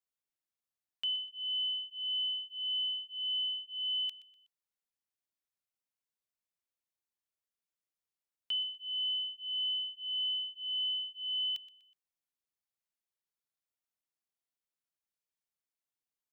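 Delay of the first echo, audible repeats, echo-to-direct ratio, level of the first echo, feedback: 123 ms, 3, −16.0 dB, −16.5 dB, 37%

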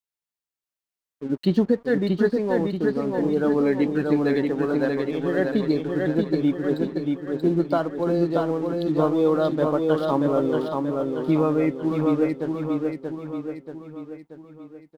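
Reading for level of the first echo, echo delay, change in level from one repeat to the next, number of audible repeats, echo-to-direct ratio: −3.5 dB, 632 ms, −6.0 dB, 5, −2.0 dB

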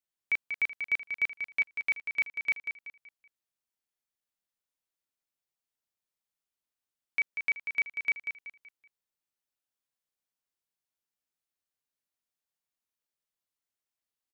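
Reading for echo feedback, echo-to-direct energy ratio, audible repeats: 35%, −7.0 dB, 4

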